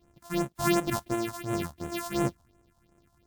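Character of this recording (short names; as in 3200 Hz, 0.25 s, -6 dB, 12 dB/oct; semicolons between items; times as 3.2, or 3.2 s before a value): a buzz of ramps at a fixed pitch in blocks of 128 samples; phasing stages 4, 2.8 Hz, lowest notch 360–4700 Hz; WMA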